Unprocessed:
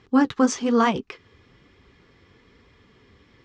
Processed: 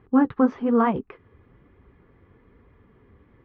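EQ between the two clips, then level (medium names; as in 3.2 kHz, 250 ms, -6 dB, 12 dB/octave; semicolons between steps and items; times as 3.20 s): low-pass 1.5 kHz 12 dB/octave; distance through air 160 m; bass shelf 65 Hz +6 dB; 0.0 dB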